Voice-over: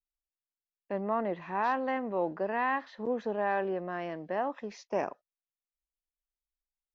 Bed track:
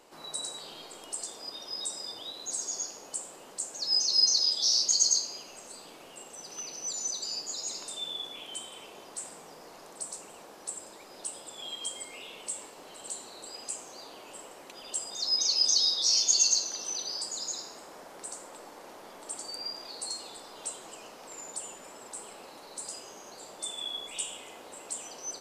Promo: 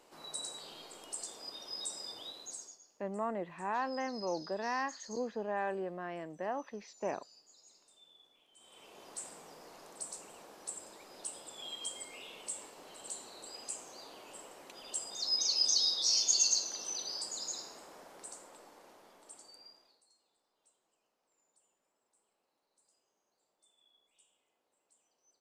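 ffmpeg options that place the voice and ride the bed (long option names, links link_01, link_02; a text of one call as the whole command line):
ffmpeg -i stem1.wav -i stem2.wav -filter_complex "[0:a]adelay=2100,volume=-5.5dB[link_01];[1:a]volume=16.5dB,afade=type=out:start_time=2.25:duration=0.53:silence=0.0891251,afade=type=in:start_time=8.56:duration=0.55:silence=0.0841395,afade=type=out:start_time=17.64:duration=2.39:silence=0.0316228[link_02];[link_01][link_02]amix=inputs=2:normalize=0" out.wav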